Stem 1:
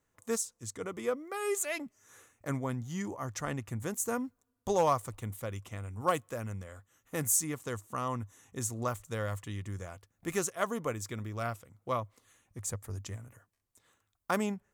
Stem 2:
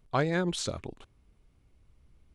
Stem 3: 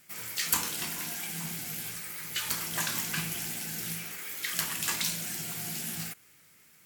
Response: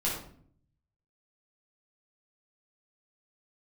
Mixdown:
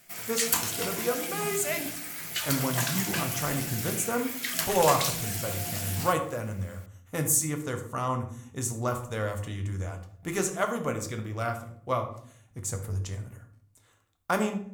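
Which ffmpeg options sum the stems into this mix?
-filter_complex "[0:a]volume=0.5dB,asplit=2[a][b];[b]volume=-8dB[c];[2:a]equalizer=f=680:w=7.6:g=12,volume=1.5dB[d];[3:a]atrim=start_sample=2205[e];[c][e]afir=irnorm=-1:irlink=0[f];[a][d][f]amix=inputs=3:normalize=0"

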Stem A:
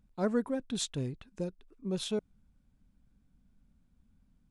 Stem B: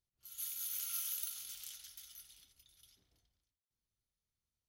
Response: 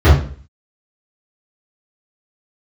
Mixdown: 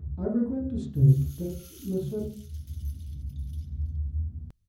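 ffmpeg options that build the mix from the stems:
-filter_complex "[0:a]acompressor=mode=upward:threshold=-38dB:ratio=2.5,tiltshelf=f=970:g=8,volume=-15dB,asplit=3[a][b][c];[b]volume=-22dB[d];[1:a]acrossover=split=9000[e][f];[f]acompressor=threshold=-47dB:ratio=4:attack=1:release=60[g];[e][g]amix=inputs=2:normalize=0,asubboost=boost=7:cutoff=240,adelay=700,volume=3dB[h];[c]apad=whole_len=237577[i];[h][i]sidechaincompress=threshold=-49dB:ratio=8:attack=16:release=1470[j];[2:a]atrim=start_sample=2205[k];[d][k]afir=irnorm=-1:irlink=0[l];[a][j][l]amix=inputs=3:normalize=0,lowshelf=f=150:g=5.5"

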